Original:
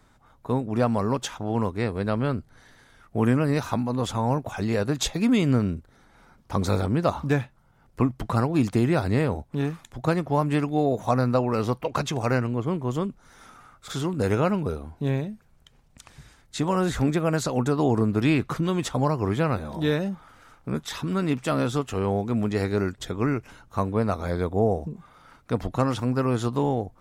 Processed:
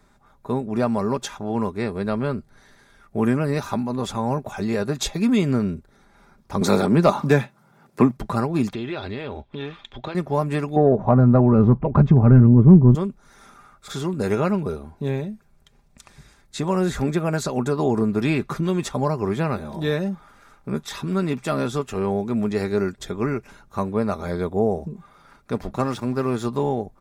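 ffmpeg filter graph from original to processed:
-filter_complex "[0:a]asettb=1/sr,asplit=3[a][b][c];[a]atrim=end=6.614[d];[b]atrim=start=6.61:end=8.17,asetpts=PTS-STARTPTS,afade=t=in:d=0.004:c=qsin,afade=t=out:st=1.556:d=0.004:c=qsin,highpass=f=130:w=0.5412,highpass=f=130:w=1.3066,acontrast=74[e];[c]atrim=start=8.166[f];[d][e]acrossfade=d=0.004:c1=hsin:c2=qsin[g];[g][f]acrossfade=d=0.004:c1=qsin:c2=hsin,asettb=1/sr,asplit=3[h][i][j];[h]atrim=end=8.734[k];[i]atrim=start=8.73:end=10.15,asetpts=PTS-STARTPTS,afade=t=in:d=0.004:c=qsin,afade=t=out:st=1.416:d=0.004:c=qsin,equalizer=f=170:t=o:w=0.42:g=-11.5,acompressor=threshold=-27dB:ratio=6:attack=3.2:release=140:knee=1:detection=peak,lowpass=f=3.3k:t=q:w=5.2[l];[j]atrim=start=10.146[m];[k][l]acrossfade=d=0.004:c1=hsin:c2=qsin[n];[n][m]acrossfade=d=0.004:c1=qsin:c2=hsin,asettb=1/sr,asplit=3[o][p][q];[o]atrim=end=10.764[r];[p]atrim=start=10.76:end=12.95,asetpts=PTS-STARTPTS,afade=t=in:d=0.004:c=qsin,afade=t=out:st=2.186:d=0.004:c=qsin,asubboost=boost=10:cutoff=230,lowpass=1k,acontrast=66[s];[q]atrim=start=12.946[t];[r][s]acrossfade=d=0.004:c1=hsin:c2=qsin[u];[u][t]acrossfade=d=0.004:c1=qsin:c2=hsin,asettb=1/sr,asplit=3[v][w][x];[v]atrim=end=25.524[y];[w]atrim=start=25.52:end=26.45,asetpts=PTS-STARTPTS,afade=t=in:d=0.004:c=qsin,afade=t=out:st=0.926:d=0.004:c=qsin,bandreject=f=50:t=h:w=6,bandreject=f=100:t=h:w=6,bandreject=f=150:t=h:w=6,bandreject=f=200:t=h:w=6,aeval=exprs='sgn(val(0))*max(abs(val(0))-0.00473,0)':c=same[z];[x]atrim=start=26.446[aa];[y][z]acrossfade=d=0.004:c1=hsin:c2=qsin[ab];[ab][aa]acrossfade=d=0.004:c1=qsin:c2=hsin,equalizer=f=350:t=o:w=0.77:g=2,bandreject=f=3k:w=12,aecho=1:1:5:0.4"

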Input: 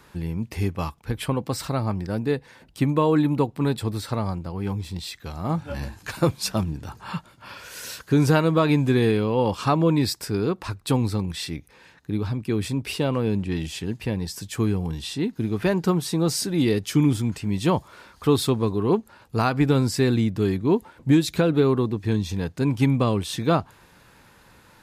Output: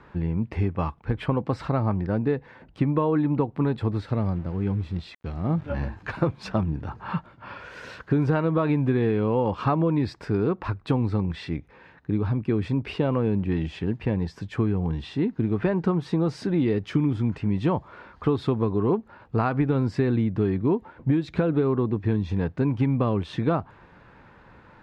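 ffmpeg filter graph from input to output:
-filter_complex "[0:a]asettb=1/sr,asplit=3[a][b][c];[a]atrim=end=4.034[d];[b]atrim=start=4.03:end=5.7,asetpts=PTS-STARTPTS,afade=t=in:d=0.004:c=qsin,afade=t=out:st=1.666:d=0.004:c=qsin,equalizer=f=980:t=o:w=1.3:g=-9,aeval=exprs='val(0)*gte(abs(val(0)),0.00631)':c=same[e];[c]atrim=start=5.696[f];[d][e]acrossfade=d=0.004:c1=hsin:c2=qsin[g];[g][f]acrossfade=d=0.004:c1=qsin:c2=hsin,lowpass=1.9k,acompressor=threshold=-22dB:ratio=6,volume=3dB"

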